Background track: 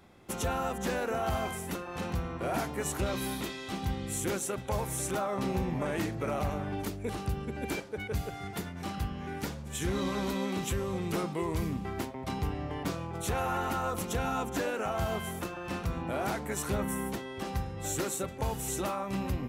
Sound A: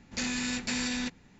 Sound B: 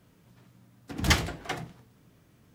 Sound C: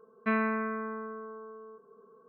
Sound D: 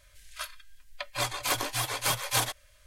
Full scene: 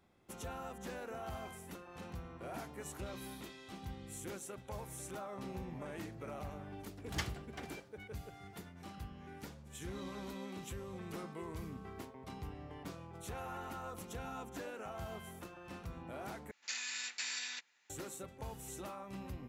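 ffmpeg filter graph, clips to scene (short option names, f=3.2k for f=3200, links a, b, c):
-filter_complex "[0:a]volume=-13dB[a];[2:a]aecho=1:1:448:0.075[b];[3:a]acompressor=threshold=-38dB:ratio=6:attack=3.2:release=140:knee=1:detection=peak[c];[1:a]highpass=1.4k[d];[a]asplit=2[e][f];[e]atrim=end=16.514[g];[d]atrim=end=1.39,asetpts=PTS-STARTPTS,volume=-6dB[h];[f]atrim=start=17.896[i];[b]atrim=end=2.54,asetpts=PTS-STARTPTS,volume=-15.5dB,afade=t=in:d=0.004:c=hsin,afade=t=out:st=2.536:d=0.004:c=hsin,adelay=6080[j];[c]atrim=end=2.28,asetpts=PTS-STARTPTS,volume=-15dB,afade=t=in:d=0.004:c=hsin,afade=t=out:st=2.276:d=0.004:c=hsin,adelay=10730[k];[g][h]acrossfade=d=0.004:c1=hsin:c2=hsin[l];[l][i]acrossfade=d=0.004:c1=hsin:c2=hsin[m];[m][j][k]amix=inputs=3:normalize=0"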